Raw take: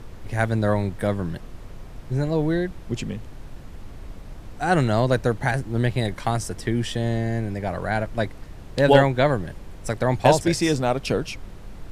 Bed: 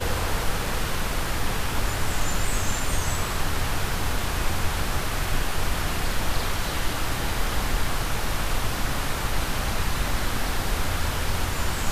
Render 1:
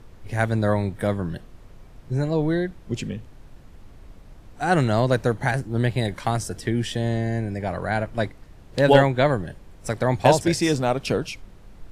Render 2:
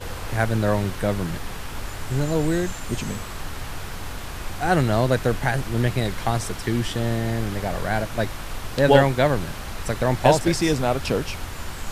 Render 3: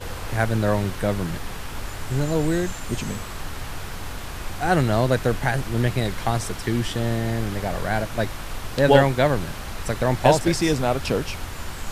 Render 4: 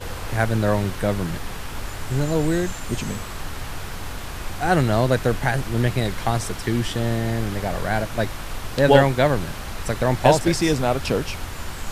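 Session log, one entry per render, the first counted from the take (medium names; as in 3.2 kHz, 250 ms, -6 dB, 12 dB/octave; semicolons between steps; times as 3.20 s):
noise print and reduce 7 dB
add bed -7 dB
no audible change
trim +1 dB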